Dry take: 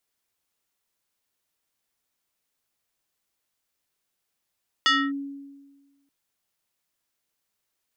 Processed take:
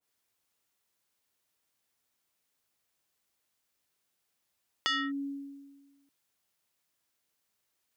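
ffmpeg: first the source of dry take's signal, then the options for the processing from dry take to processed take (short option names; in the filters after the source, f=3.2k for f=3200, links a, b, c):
-f lavfi -i "aevalsrc='0.178*pow(10,-3*t/1.38)*sin(2*PI*279*t+2.6*clip(1-t/0.26,0,1)*sin(2*PI*5.71*279*t))':d=1.23:s=44100"
-af "highpass=45,acompressor=threshold=-31dB:ratio=12,adynamicequalizer=threshold=0.00501:dfrequency=1800:dqfactor=0.7:tfrequency=1800:tqfactor=0.7:attack=5:release=100:ratio=0.375:range=3:mode=boostabove:tftype=highshelf"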